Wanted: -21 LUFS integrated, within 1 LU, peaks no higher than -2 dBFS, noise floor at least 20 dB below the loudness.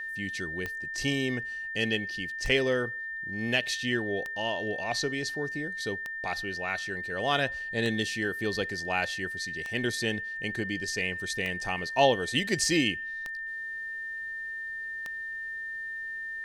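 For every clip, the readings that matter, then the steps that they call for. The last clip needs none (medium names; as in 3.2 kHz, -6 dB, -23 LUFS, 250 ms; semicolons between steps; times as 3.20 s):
clicks found 9; steady tone 1.8 kHz; tone level -34 dBFS; loudness -30.0 LUFS; peak level -9.0 dBFS; loudness target -21.0 LUFS
-> de-click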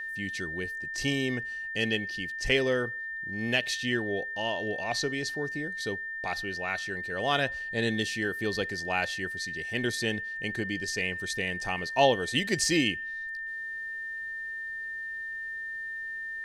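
clicks found 0; steady tone 1.8 kHz; tone level -34 dBFS
-> band-stop 1.8 kHz, Q 30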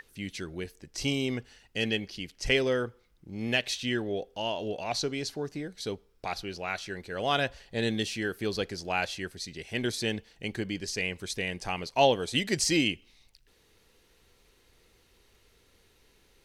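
steady tone not found; loudness -31.0 LUFS; peak level -9.5 dBFS; loudness target -21.0 LUFS
-> trim +10 dB; peak limiter -2 dBFS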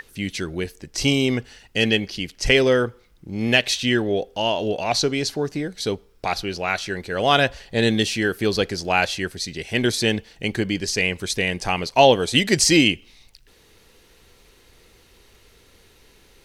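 loudness -21.0 LUFS; peak level -2.0 dBFS; noise floor -55 dBFS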